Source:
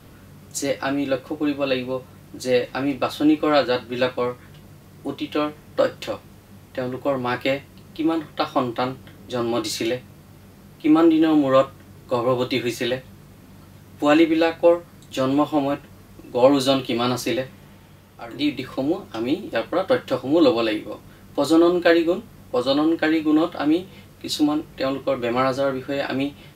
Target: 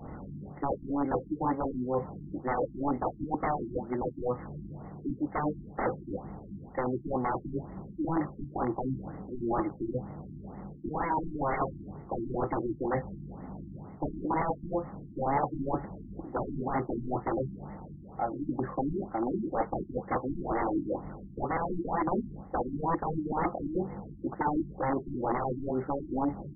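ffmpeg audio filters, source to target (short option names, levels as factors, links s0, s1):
-af "aeval=exprs='(mod(7.08*val(0)+1,2)-1)/7.08':c=same,bass=f=250:g=2,treble=f=4000:g=-6,areverse,acompressor=threshold=0.0316:ratio=10,areverse,equalizer=f=100:t=o:w=0.33:g=-10,equalizer=f=800:t=o:w=0.33:g=9,equalizer=f=1600:t=o:w=0.33:g=-8,afftfilt=real='re*lt(b*sr/1024,340*pow(2200/340,0.5+0.5*sin(2*PI*2.1*pts/sr)))':imag='im*lt(b*sr/1024,340*pow(2200/340,0.5+0.5*sin(2*PI*2.1*pts/sr)))':win_size=1024:overlap=0.75,volume=1.5"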